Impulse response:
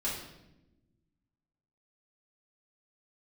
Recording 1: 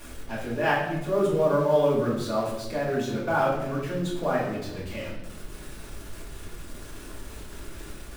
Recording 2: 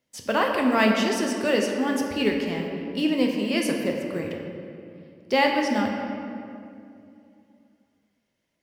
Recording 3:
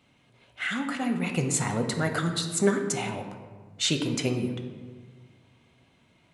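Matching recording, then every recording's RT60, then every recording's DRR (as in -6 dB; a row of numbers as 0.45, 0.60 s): 1; 0.95, 2.5, 1.5 s; -7.5, 1.0, 5.0 dB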